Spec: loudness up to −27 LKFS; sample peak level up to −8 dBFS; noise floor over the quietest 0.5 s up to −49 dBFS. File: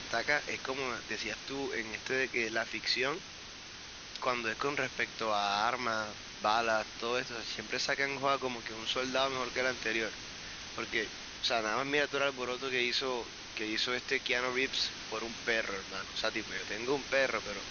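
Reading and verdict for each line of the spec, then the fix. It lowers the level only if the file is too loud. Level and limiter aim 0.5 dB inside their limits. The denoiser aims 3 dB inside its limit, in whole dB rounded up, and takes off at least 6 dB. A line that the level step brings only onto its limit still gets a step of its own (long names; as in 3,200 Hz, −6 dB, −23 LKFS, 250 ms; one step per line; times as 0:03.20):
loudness −33.0 LKFS: in spec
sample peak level −15.0 dBFS: in spec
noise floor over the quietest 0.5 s −48 dBFS: out of spec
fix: broadband denoise 6 dB, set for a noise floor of −48 dBFS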